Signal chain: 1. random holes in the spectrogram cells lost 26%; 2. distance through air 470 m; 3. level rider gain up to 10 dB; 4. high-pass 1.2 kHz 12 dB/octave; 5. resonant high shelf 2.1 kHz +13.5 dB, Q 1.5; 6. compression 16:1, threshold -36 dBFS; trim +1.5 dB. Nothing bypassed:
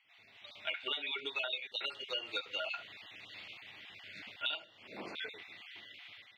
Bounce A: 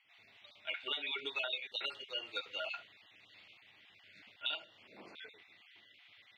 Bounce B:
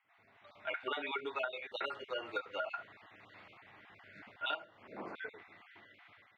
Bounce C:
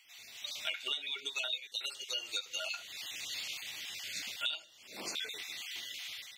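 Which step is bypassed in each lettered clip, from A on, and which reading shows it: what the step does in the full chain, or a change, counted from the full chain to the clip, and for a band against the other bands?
3, momentary loudness spread change +8 LU; 5, 4 kHz band -12.0 dB; 2, 8 kHz band +27.0 dB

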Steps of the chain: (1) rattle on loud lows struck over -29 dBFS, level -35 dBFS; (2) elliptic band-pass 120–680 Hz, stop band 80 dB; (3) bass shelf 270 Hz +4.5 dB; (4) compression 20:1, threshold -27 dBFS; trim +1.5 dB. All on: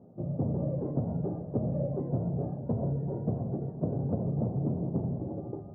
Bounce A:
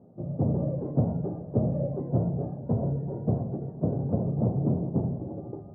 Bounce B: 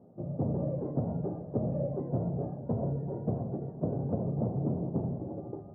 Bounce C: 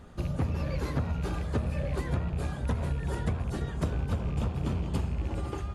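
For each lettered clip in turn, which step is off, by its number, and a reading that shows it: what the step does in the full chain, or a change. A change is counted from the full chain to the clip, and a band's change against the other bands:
4, mean gain reduction 2.0 dB; 3, 125 Hz band -2.0 dB; 2, 1 kHz band +8.0 dB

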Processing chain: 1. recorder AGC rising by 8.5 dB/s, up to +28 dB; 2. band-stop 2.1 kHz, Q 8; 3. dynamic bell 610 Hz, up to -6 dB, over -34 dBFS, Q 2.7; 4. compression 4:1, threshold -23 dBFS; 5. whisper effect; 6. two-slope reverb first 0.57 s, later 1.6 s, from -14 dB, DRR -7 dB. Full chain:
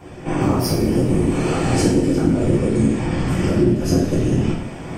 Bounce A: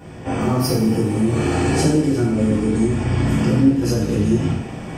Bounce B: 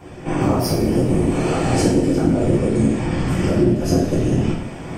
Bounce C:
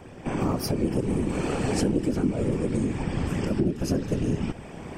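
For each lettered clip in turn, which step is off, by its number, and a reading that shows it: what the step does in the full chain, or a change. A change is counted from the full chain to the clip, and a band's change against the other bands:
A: 5, 500 Hz band -1.5 dB; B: 3, 1 kHz band +1.5 dB; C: 6, loudness change -8.0 LU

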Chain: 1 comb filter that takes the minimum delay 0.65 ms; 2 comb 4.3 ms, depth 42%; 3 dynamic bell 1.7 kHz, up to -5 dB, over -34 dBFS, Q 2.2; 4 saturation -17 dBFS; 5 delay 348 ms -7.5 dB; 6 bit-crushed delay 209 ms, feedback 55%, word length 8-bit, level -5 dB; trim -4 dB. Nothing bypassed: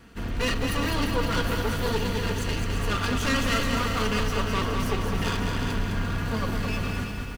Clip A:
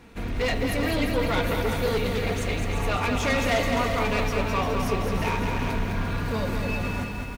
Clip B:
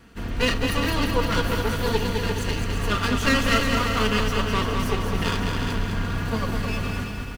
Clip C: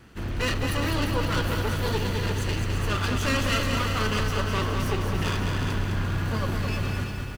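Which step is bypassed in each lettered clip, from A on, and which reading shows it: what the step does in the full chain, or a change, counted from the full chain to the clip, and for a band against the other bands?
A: 1, 500 Hz band +4.0 dB; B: 4, distortion -12 dB; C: 2, 125 Hz band +3.5 dB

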